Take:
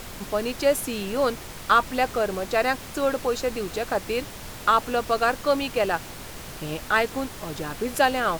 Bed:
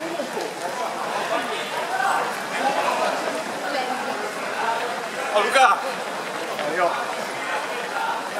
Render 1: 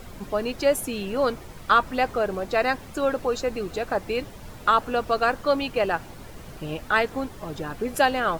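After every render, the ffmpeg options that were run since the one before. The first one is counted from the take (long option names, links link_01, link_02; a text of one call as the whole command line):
ffmpeg -i in.wav -af "afftdn=noise_reduction=10:noise_floor=-39" out.wav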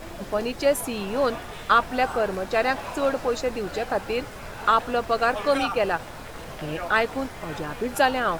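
ffmpeg -i in.wav -i bed.wav -filter_complex "[1:a]volume=-13dB[link_01];[0:a][link_01]amix=inputs=2:normalize=0" out.wav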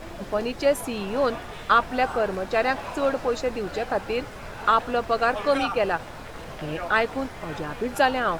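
ffmpeg -i in.wav -af "highshelf=frequency=7600:gain=-7" out.wav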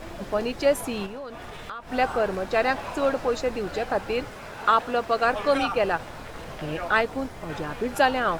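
ffmpeg -i in.wav -filter_complex "[0:a]asettb=1/sr,asplit=3[link_01][link_02][link_03];[link_01]atrim=end=1.064[link_04];[link_02]atrim=start=1.06:end=1.92,asetpts=PTS-STARTPTS,afade=type=in:duration=0.004:curve=qsin,afade=type=out:start_time=0.856:duration=0.004:curve=qsin,acompressor=threshold=-34dB:ratio=6:attack=3.2:release=140:knee=1:detection=peak[link_05];[link_03]atrim=start=1.916[link_06];[link_04][link_05]acrossfade=duration=0.004:curve1=hsin:curve2=qsin[link_07];[link_07][link_06]acrossfade=duration=0.004:curve1=qsin:curve2=hsin,asettb=1/sr,asplit=3[link_08][link_09][link_10];[link_08]atrim=end=4.344[link_11];[link_09]atrim=start=4.34:end=5.25,asetpts=PTS-STARTPTS,afade=type=in:duration=0.004:curve=qsin,afade=type=out:start_time=0.906:duration=0.004:curve=qsin,lowshelf=frequency=89:gain=-11.5[link_12];[link_10]atrim=start=5.246[link_13];[link_11][link_12]acrossfade=duration=0.004:curve1=hsin:curve2=qsin[link_14];[link_14][link_13]acrossfade=duration=0.004:curve1=qsin:curve2=hsin,asettb=1/sr,asplit=3[link_15][link_16][link_17];[link_15]atrim=end=7.014[link_18];[link_16]atrim=start=7.01:end=7.5,asetpts=PTS-STARTPTS,afade=type=in:duration=0.004:curve=qsin,afade=type=out:start_time=0.486:duration=0.004:curve=qsin,equalizer=frequency=2000:width=0.46:gain=-4.5[link_19];[link_17]atrim=start=7.496[link_20];[link_18][link_19]acrossfade=duration=0.004:curve1=hsin:curve2=qsin[link_21];[link_21][link_20]acrossfade=duration=0.004:curve1=qsin:curve2=hsin" out.wav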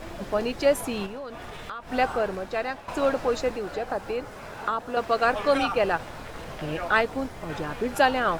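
ffmpeg -i in.wav -filter_complex "[0:a]asettb=1/sr,asplit=3[link_01][link_02][link_03];[link_01]atrim=end=3.504[link_04];[link_02]atrim=start=3.5:end=4.97,asetpts=PTS-STARTPTS,afade=type=in:duration=0.004:curve=qsin,afade=type=out:start_time=1.466:duration=0.004:curve=qsin,acrossover=split=360|1700|4400[link_05][link_06][link_07][link_08];[link_05]acompressor=threshold=-39dB:ratio=3[link_09];[link_06]acompressor=threshold=-27dB:ratio=3[link_10];[link_07]acompressor=threshold=-50dB:ratio=3[link_11];[link_08]acompressor=threshold=-54dB:ratio=3[link_12];[link_09][link_10][link_11][link_12]amix=inputs=4:normalize=0[link_13];[link_03]atrim=start=4.966[link_14];[link_04][link_13]acrossfade=duration=0.004:curve1=hsin:curve2=qsin[link_15];[link_15][link_14]acrossfade=duration=0.004:curve1=qsin:curve2=hsin,asplit=2[link_16][link_17];[link_16]atrim=end=2.88,asetpts=PTS-STARTPTS,afade=type=out:start_time=1.98:duration=0.9:silence=0.266073[link_18];[link_17]atrim=start=2.88,asetpts=PTS-STARTPTS,afade=type=in:duration=0.004:curve=hsin:silence=0.266073[link_19];[link_18][link_19]concat=n=2:v=0:a=1" out.wav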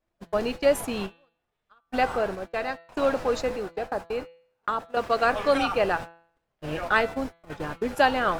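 ffmpeg -i in.wav -af "agate=range=-42dB:threshold=-31dB:ratio=16:detection=peak,bandreject=frequency=167.6:width_type=h:width=4,bandreject=frequency=335.2:width_type=h:width=4,bandreject=frequency=502.8:width_type=h:width=4,bandreject=frequency=670.4:width_type=h:width=4,bandreject=frequency=838:width_type=h:width=4,bandreject=frequency=1005.6:width_type=h:width=4,bandreject=frequency=1173.2:width_type=h:width=4,bandreject=frequency=1340.8:width_type=h:width=4,bandreject=frequency=1508.4:width_type=h:width=4,bandreject=frequency=1676:width_type=h:width=4,bandreject=frequency=1843.6:width_type=h:width=4,bandreject=frequency=2011.2:width_type=h:width=4,bandreject=frequency=2178.8:width_type=h:width=4,bandreject=frequency=2346.4:width_type=h:width=4,bandreject=frequency=2514:width_type=h:width=4,bandreject=frequency=2681.6:width_type=h:width=4,bandreject=frequency=2849.2:width_type=h:width=4,bandreject=frequency=3016.8:width_type=h:width=4,bandreject=frequency=3184.4:width_type=h:width=4,bandreject=frequency=3352:width_type=h:width=4,bandreject=frequency=3519.6:width_type=h:width=4,bandreject=frequency=3687.2:width_type=h:width=4,bandreject=frequency=3854.8:width_type=h:width=4,bandreject=frequency=4022.4:width_type=h:width=4,bandreject=frequency=4190:width_type=h:width=4,bandreject=frequency=4357.6:width_type=h:width=4,bandreject=frequency=4525.2:width_type=h:width=4" out.wav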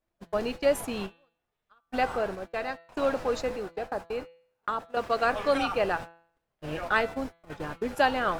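ffmpeg -i in.wav -af "volume=-3dB" out.wav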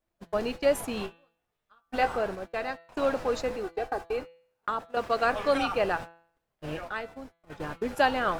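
ffmpeg -i in.wav -filter_complex "[0:a]asettb=1/sr,asplit=3[link_01][link_02][link_03];[link_01]atrim=end=0.954[link_04];[link_02]atrim=start=0.95:end=2.09,asetpts=PTS-STARTPTS,afade=type=in:duration=0.004:curve=qsin,afade=type=out:start_time=1.136:duration=0.004:curve=qsin,asplit=2[link_05][link_06];[link_06]adelay=18,volume=-7.5dB[link_07];[link_05][link_07]amix=inputs=2:normalize=0,atrim=end_sample=50274[link_08];[link_03]atrim=start=2.086[link_09];[link_04][link_08]acrossfade=duration=0.004:curve1=hsin:curve2=qsin[link_10];[link_10][link_09]acrossfade=duration=0.004:curve1=qsin:curve2=hsin,asettb=1/sr,asplit=3[link_11][link_12][link_13];[link_11]atrim=end=3.634[link_14];[link_12]atrim=start=3.63:end=4.19,asetpts=PTS-STARTPTS,afade=type=in:duration=0.004:curve=qsin,afade=type=out:start_time=0.556:duration=0.004:curve=qsin,aecho=1:1:2.6:0.61,atrim=end_sample=24696[link_15];[link_13]atrim=start=4.186[link_16];[link_14][link_15]acrossfade=duration=0.004:curve1=hsin:curve2=qsin[link_17];[link_17][link_16]acrossfade=duration=0.004:curve1=qsin:curve2=hsin,asplit=3[link_18][link_19][link_20];[link_18]atrim=end=6.93,asetpts=PTS-STARTPTS,afade=type=out:start_time=6.7:duration=0.23:silence=0.316228[link_21];[link_19]atrim=start=6.93:end=7.4,asetpts=PTS-STARTPTS,volume=-10dB[link_22];[link_20]atrim=start=7.4,asetpts=PTS-STARTPTS,afade=type=in:duration=0.23:silence=0.316228[link_23];[link_21][link_22][link_23]concat=n=3:v=0:a=1" out.wav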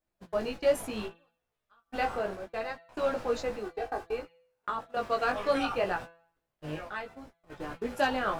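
ffmpeg -i in.wav -af "volume=15.5dB,asoftclip=hard,volume=-15.5dB,flanger=delay=16:depth=3.6:speed=0.66" out.wav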